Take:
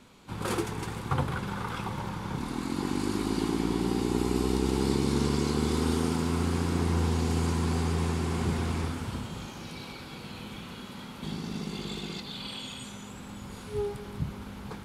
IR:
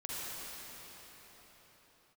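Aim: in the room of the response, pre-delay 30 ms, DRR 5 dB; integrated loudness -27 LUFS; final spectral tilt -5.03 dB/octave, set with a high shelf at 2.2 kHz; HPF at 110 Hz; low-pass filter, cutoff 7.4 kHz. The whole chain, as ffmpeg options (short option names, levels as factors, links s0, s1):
-filter_complex "[0:a]highpass=110,lowpass=7400,highshelf=f=2200:g=5,asplit=2[s0][s1];[1:a]atrim=start_sample=2205,adelay=30[s2];[s1][s2]afir=irnorm=-1:irlink=0,volume=0.398[s3];[s0][s3]amix=inputs=2:normalize=0,volume=1.5"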